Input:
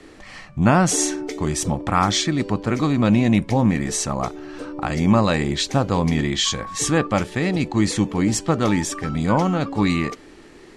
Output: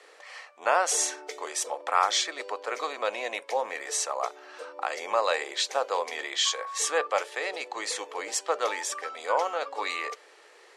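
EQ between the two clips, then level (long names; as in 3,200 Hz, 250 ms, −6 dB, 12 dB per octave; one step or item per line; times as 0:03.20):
elliptic high-pass filter 470 Hz, stop band 70 dB
−3.5 dB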